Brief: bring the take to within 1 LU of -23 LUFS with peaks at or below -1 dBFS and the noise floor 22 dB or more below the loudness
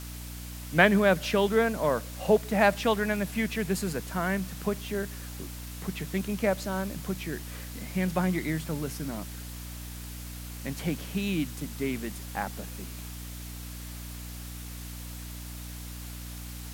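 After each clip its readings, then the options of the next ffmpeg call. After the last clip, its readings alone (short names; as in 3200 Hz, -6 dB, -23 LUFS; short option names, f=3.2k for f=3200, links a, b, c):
hum 60 Hz; harmonics up to 300 Hz; hum level -38 dBFS; noise floor -40 dBFS; noise floor target -53 dBFS; loudness -30.5 LUFS; peak -4.0 dBFS; loudness target -23.0 LUFS
-> -af "bandreject=f=60:t=h:w=6,bandreject=f=120:t=h:w=6,bandreject=f=180:t=h:w=6,bandreject=f=240:t=h:w=6,bandreject=f=300:t=h:w=6"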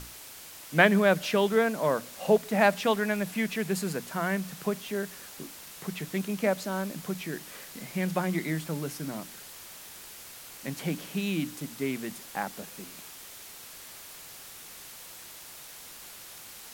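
hum none; noise floor -46 dBFS; noise floor target -51 dBFS
-> -af "afftdn=nr=6:nf=-46"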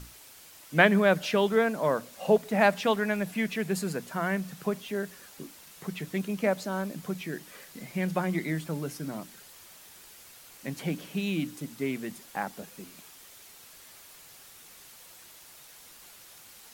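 noise floor -52 dBFS; loudness -29.0 LUFS; peak -4.0 dBFS; loudness target -23.0 LUFS
-> -af "volume=6dB,alimiter=limit=-1dB:level=0:latency=1"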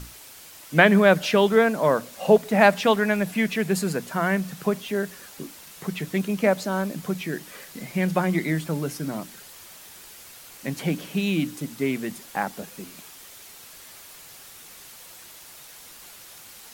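loudness -23.5 LUFS; peak -1.0 dBFS; noise floor -46 dBFS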